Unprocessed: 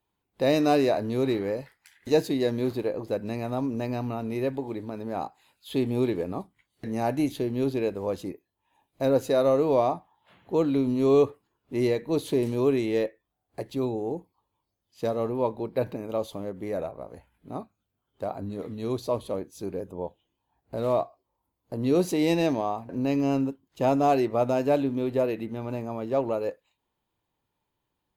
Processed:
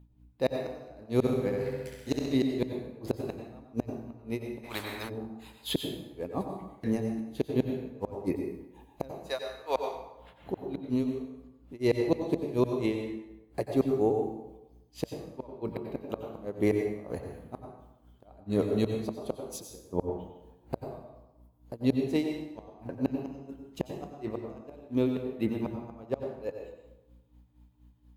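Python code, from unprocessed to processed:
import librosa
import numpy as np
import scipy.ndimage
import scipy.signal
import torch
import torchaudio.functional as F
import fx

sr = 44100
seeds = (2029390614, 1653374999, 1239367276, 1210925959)

y = fx.highpass(x, sr, hz=1000.0, slope=12, at=(9.21, 9.88))
y = fx.rider(y, sr, range_db=5, speed_s=0.5)
y = fx.gate_flip(y, sr, shuts_db=-18.0, range_db=-31)
y = fx.add_hum(y, sr, base_hz=60, snr_db=23)
y = y * (1.0 - 0.98 / 2.0 + 0.98 / 2.0 * np.cos(2.0 * np.pi * 4.2 * (np.arange(len(y)) / sr)))
y = fx.room_flutter(y, sr, wall_m=11.3, rt60_s=0.96, at=(1.23, 2.35), fade=0.02)
y = fx.rev_plate(y, sr, seeds[0], rt60_s=0.94, hf_ratio=0.7, predelay_ms=80, drr_db=3.5)
y = fx.spectral_comp(y, sr, ratio=4.0, at=(4.63, 5.08), fade=0.02)
y = F.gain(torch.from_numpy(y), 5.0).numpy()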